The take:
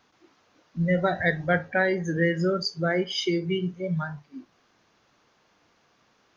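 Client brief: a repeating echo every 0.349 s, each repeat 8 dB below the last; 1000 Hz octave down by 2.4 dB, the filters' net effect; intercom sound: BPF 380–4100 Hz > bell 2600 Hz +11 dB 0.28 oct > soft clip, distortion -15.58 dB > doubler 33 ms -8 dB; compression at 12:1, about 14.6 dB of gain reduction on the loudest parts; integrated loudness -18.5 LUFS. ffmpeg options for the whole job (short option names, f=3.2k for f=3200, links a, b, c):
-filter_complex "[0:a]equalizer=f=1k:t=o:g=-4,acompressor=threshold=-34dB:ratio=12,highpass=380,lowpass=4.1k,equalizer=f=2.6k:t=o:w=0.28:g=11,aecho=1:1:349|698|1047|1396|1745:0.398|0.159|0.0637|0.0255|0.0102,asoftclip=threshold=-33dB,asplit=2[a][b];[b]adelay=33,volume=-8dB[c];[a][c]amix=inputs=2:normalize=0,volume=23dB"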